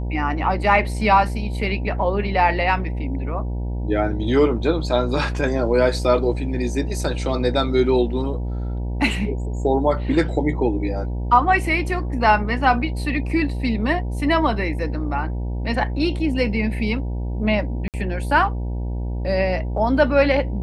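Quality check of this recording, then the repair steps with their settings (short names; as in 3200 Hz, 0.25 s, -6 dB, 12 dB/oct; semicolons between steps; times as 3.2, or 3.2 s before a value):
buzz 60 Hz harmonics 16 -25 dBFS
17.88–17.94 gap 58 ms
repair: de-hum 60 Hz, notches 16; interpolate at 17.88, 58 ms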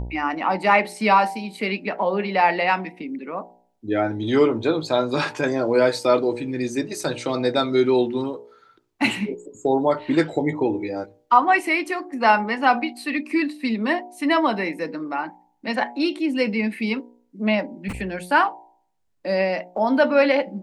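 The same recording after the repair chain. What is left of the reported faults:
none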